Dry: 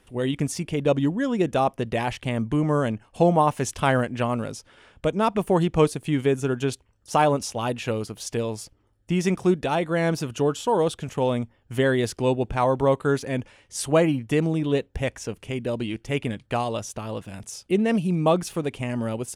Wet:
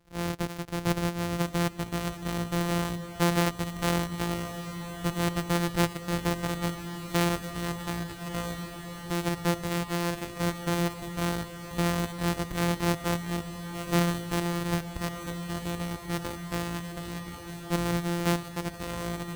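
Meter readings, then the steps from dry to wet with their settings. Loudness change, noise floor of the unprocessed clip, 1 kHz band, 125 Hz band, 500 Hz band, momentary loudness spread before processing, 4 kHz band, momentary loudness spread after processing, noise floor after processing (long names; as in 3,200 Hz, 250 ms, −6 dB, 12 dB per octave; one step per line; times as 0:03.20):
−6.0 dB, −63 dBFS, −7.0 dB, −3.5 dB, −10.5 dB, 10 LU, 0.0 dB, 8 LU, −42 dBFS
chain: samples sorted by size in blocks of 256 samples
feedback delay with all-pass diffusion 1,318 ms, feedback 76%, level −11.5 dB
level −6.5 dB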